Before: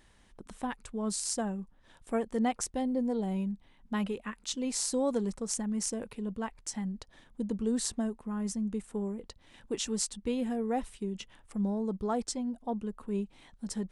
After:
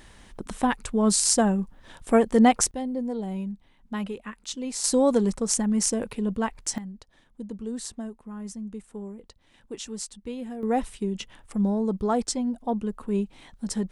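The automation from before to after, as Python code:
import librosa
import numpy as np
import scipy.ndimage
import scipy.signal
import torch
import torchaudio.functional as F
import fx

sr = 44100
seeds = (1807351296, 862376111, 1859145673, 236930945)

y = fx.gain(x, sr, db=fx.steps((0.0, 12.0), (2.71, 1.0), (4.84, 9.0), (6.78, -3.0), (10.63, 7.0)))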